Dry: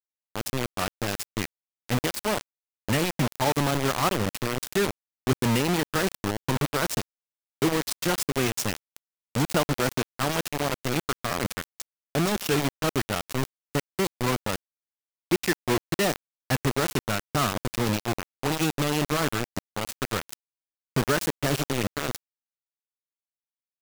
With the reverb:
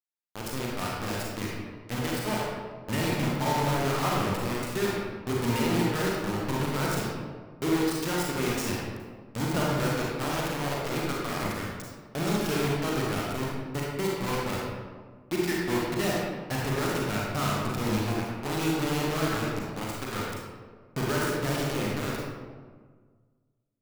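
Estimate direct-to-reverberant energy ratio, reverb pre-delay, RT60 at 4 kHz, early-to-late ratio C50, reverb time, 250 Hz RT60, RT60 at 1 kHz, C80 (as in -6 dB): -4.5 dB, 33 ms, 0.85 s, -2.5 dB, 1.6 s, 1.9 s, 1.5 s, 0.5 dB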